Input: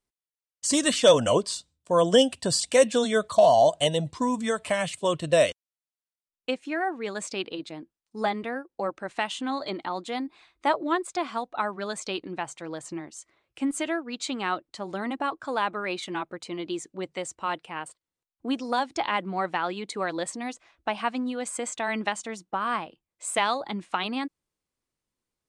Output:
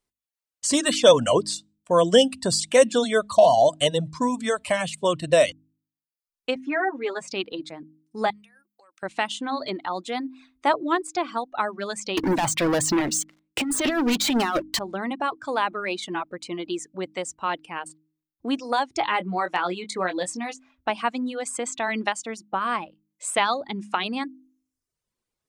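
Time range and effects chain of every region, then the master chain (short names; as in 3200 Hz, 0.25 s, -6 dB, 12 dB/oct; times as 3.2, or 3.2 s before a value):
6.55–7.28 tone controls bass -3 dB, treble -14 dB + comb 7.4 ms, depth 93%
8.3–9.03 compressor 16:1, threshold -34 dBFS + pre-emphasis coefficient 0.97
12.17–14.79 negative-ratio compressor -33 dBFS, ratio -0.5 + sample leveller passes 5
19–20.9 doubler 22 ms -7 dB + hard clip -13 dBFS
whole clip: de-esser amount 40%; reverb removal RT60 0.73 s; de-hum 51.86 Hz, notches 6; gain +3 dB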